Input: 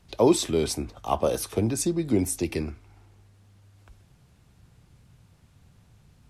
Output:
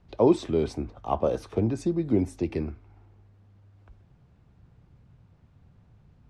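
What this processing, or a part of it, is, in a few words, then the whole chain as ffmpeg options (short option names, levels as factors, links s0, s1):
through cloth: -af "lowpass=6500,highshelf=f=2400:g=-15"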